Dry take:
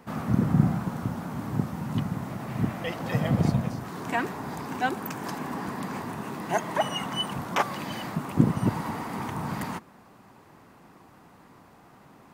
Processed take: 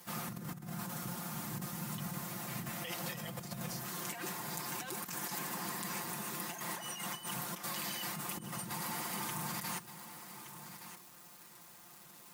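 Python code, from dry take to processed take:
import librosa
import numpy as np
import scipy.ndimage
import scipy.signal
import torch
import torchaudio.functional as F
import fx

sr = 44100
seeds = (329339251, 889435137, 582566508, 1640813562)

p1 = fx.dmg_crackle(x, sr, seeds[0], per_s=590.0, level_db=-52.0)
p2 = F.preemphasis(torch.from_numpy(p1), 0.9).numpy()
p3 = p2 + 0.82 * np.pad(p2, (int(5.7 * sr / 1000.0), 0))[:len(p2)]
p4 = fx.over_compress(p3, sr, threshold_db=-45.0, ratio=-1.0)
p5 = p4 + fx.echo_single(p4, sr, ms=1170, db=-11.5, dry=0)
y = p5 * librosa.db_to_amplitude(3.5)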